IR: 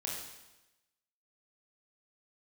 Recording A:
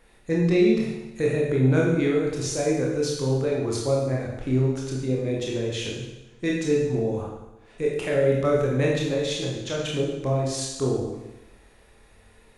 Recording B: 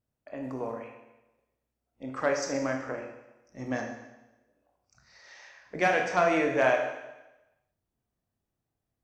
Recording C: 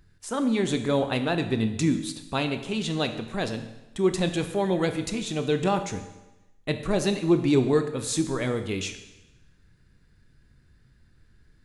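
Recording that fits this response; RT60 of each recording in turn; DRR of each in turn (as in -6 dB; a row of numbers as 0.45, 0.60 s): A; 1.0, 1.0, 1.0 s; -3.5, 2.0, 7.5 dB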